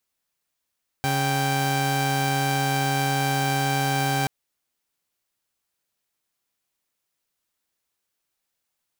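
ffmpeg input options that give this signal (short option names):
-f lavfi -i "aevalsrc='0.0841*((2*mod(138.59*t,1)-1)+(2*mod(783.99*t,1)-1))':d=3.23:s=44100"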